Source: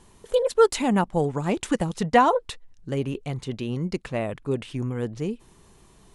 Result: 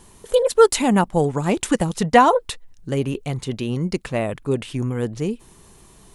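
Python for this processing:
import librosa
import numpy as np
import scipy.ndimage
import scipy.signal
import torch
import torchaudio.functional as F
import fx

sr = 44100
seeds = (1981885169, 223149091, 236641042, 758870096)

y = fx.high_shelf(x, sr, hz=10000.0, db=11.5)
y = y * librosa.db_to_amplitude(4.5)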